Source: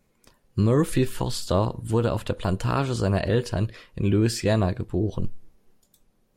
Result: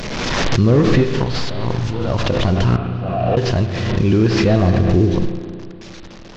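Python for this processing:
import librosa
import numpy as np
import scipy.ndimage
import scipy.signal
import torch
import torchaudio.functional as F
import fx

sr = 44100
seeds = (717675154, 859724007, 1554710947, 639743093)

y = fx.delta_mod(x, sr, bps=32000, step_db=-38.5)
y = fx.over_compress(y, sr, threshold_db=-31.0, ratio=-1.0, at=(1.23, 2.14))
y = fx.vowel_filter(y, sr, vowel='a', at=(2.76, 3.37))
y = fx.low_shelf(y, sr, hz=240.0, db=5.5, at=(4.68, 5.16))
y = fx.rev_spring(y, sr, rt60_s=2.4, pass_ms=(33, 51), chirp_ms=20, drr_db=6.0)
y = fx.pre_swell(y, sr, db_per_s=25.0)
y = y * librosa.db_to_amplitude(6.5)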